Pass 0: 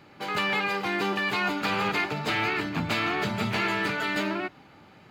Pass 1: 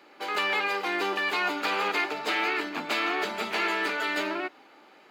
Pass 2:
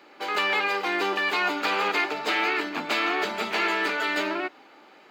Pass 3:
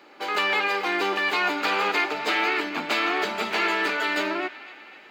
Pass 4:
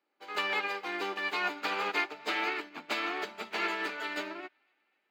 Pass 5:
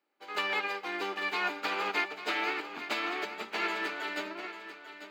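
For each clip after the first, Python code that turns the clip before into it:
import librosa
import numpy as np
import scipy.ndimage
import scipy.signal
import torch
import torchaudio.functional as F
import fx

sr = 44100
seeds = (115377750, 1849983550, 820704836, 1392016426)

y1 = scipy.signal.sosfilt(scipy.signal.butter(4, 300.0, 'highpass', fs=sr, output='sos'), x)
y2 = fx.peak_eq(y1, sr, hz=11000.0, db=-5.5, octaves=0.49)
y2 = F.gain(torch.from_numpy(y2), 2.5).numpy()
y3 = fx.echo_banded(y2, sr, ms=252, feedback_pct=67, hz=2400.0, wet_db=-14.5)
y3 = F.gain(torch.from_numpy(y3), 1.0).numpy()
y4 = fx.upward_expand(y3, sr, threshold_db=-38.0, expansion=2.5)
y4 = F.gain(torch.from_numpy(y4), -5.0).numpy()
y5 = fx.echo_feedback(y4, sr, ms=844, feedback_pct=25, wet_db=-11.5)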